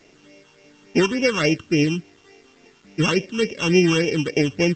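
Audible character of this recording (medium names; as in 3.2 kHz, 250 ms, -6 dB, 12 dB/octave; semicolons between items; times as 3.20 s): a buzz of ramps at a fixed pitch in blocks of 16 samples; phasing stages 8, 3.5 Hz, lowest notch 580–1300 Hz; a quantiser's noise floor 10-bit, dither none; µ-law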